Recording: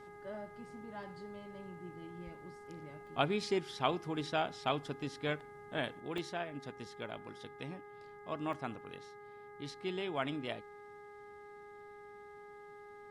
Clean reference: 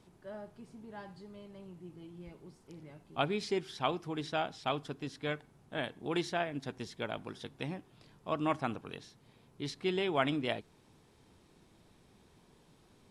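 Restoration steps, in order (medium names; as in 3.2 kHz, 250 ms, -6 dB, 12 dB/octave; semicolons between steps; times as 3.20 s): de-hum 412.1 Hz, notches 5; interpolate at 1.03/3.07/5.40/6.18/8.53 s, 1.6 ms; gain correction +6 dB, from 6.00 s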